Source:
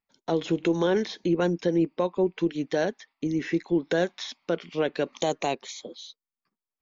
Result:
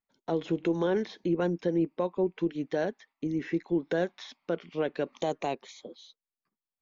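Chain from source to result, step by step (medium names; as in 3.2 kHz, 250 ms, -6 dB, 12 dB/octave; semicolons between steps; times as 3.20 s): treble shelf 3.5 kHz -10.5 dB; trim -3.5 dB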